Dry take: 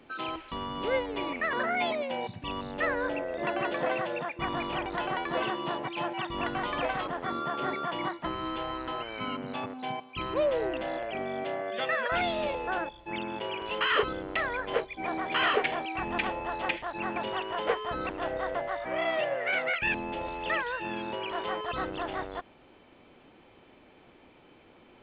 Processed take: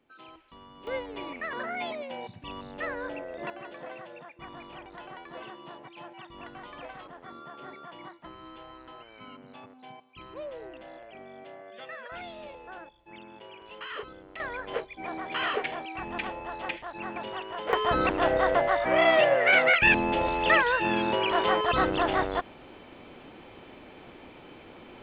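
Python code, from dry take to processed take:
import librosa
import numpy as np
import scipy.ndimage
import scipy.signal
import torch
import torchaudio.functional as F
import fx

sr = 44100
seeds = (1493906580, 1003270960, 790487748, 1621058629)

y = fx.gain(x, sr, db=fx.steps((0.0, -15.0), (0.87, -5.0), (3.5, -12.5), (14.4, -3.5), (17.73, 8.5)))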